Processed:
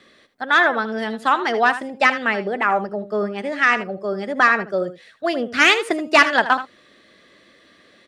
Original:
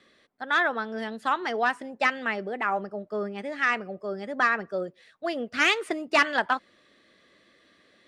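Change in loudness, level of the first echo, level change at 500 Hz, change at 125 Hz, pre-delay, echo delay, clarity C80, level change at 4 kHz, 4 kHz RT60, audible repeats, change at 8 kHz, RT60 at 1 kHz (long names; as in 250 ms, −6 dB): +8.0 dB, −13.0 dB, +8.0 dB, can't be measured, no reverb audible, 78 ms, no reverb audible, +8.0 dB, no reverb audible, 1, +8.0 dB, no reverb audible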